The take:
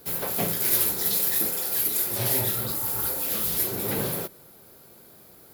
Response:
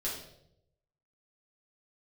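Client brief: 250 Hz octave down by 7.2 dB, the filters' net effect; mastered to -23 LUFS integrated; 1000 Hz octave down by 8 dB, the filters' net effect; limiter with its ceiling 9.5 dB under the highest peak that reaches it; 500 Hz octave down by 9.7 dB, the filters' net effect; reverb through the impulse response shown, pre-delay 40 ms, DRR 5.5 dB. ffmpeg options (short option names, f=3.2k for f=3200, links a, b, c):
-filter_complex "[0:a]equalizer=f=250:t=o:g=-8,equalizer=f=500:t=o:g=-8,equalizer=f=1k:t=o:g=-7.5,alimiter=limit=-18dB:level=0:latency=1,asplit=2[a][b];[1:a]atrim=start_sample=2205,adelay=40[c];[b][c]afir=irnorm=-1:irlink=0,volume=-9dB[d];[a][d]amix=inputs=2:normalize=0,volume=2dB"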